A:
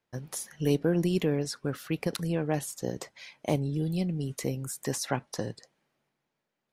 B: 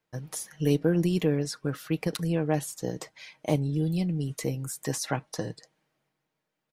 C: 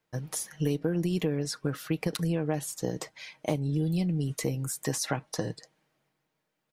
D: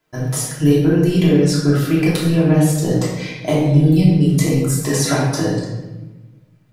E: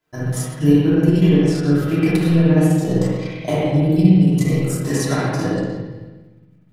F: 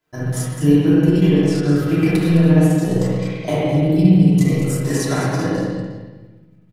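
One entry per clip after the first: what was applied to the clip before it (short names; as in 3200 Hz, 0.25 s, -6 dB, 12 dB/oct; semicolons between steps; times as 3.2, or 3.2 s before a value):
comb 6.4 ms, depth 40%
compressor 6:1, threshold -26 dBFS, peak gain reduction 8 dB; gain +2 dB
shoebox room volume 650 m³, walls mixed, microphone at 3 m; gain +6 dB
transient shaper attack +4 dB, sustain -10 dB; spring tank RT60 1.1 s, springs 48/59 ms, chirp 70 ms, DRR -3.5 dB; gain -6.5 dB
echo 0.209 s -9 dB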